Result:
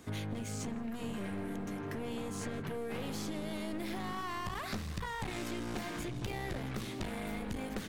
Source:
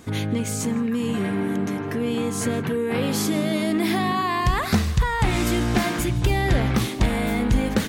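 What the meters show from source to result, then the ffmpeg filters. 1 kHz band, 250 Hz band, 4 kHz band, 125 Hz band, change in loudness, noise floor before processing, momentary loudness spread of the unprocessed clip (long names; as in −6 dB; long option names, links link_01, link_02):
−15.5 dB, −16.5 dB, −14.5 dB, −17.5 dB, −16.5 dB, −29 dBFS, 4 LU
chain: -filter_complex "[0:a]aeval=exprs='clip(val(0),-1,0.0473)':channel_layout=same,bandreject=frequency=60:width_type=h:width=6,bandreject=frequency=120:width_type=h:width=6,bandreject=frequency=180:width_type=h:width=6,bandreject=frequency=240:width_type=h:width=6,acrossover=split=99|6900[link_01][link_02][link_03];[link_01]acompressor=threshold=-37dB:ratio=4[link_04];[link_02]acompressor=threshold=-29dB:ratio=4[link_05];[link_03]acompressor=threshold=-48dB:ratio=4[link_06];[link_04][link_05][link_06]amix=inputs=3:normalize=0,volume=-8dB"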